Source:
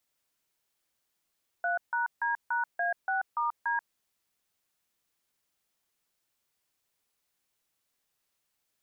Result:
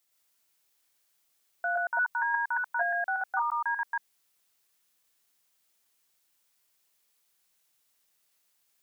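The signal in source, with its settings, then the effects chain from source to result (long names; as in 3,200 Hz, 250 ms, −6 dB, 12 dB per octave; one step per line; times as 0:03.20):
touch tones "3#D#A6*D", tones 135 ms, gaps 153 ms, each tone −29 dBFS
delay that plays each chunk backwards 117 ms, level −0.5 dB
spectral tilt +1.5 dB per octave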